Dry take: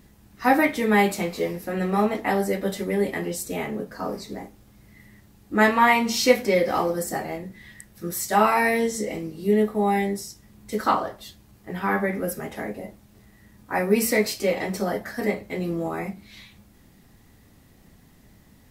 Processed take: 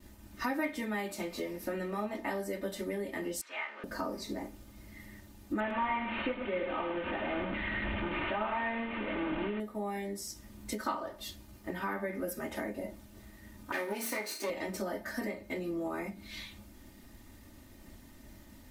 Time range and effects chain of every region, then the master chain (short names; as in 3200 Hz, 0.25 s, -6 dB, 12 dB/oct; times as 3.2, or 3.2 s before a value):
3.41–3.84 zero-crossing step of -37 dBFS + Butterworth band-pass 1700 Hz, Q 0.99
5.6–9.6 delta modulation 16 kbps, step -21 dBFS + echo 0.105 s -7.5 dB
13.72–14.5 minimum comb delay 0.48 ms + HPF 310 Hz + flutter echo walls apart 6 m, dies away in 0.24 s
whole clip: expander -52 dBFS; compressor 4:1, threshold -36 dBFS; comb 3.3 ms, depth 63%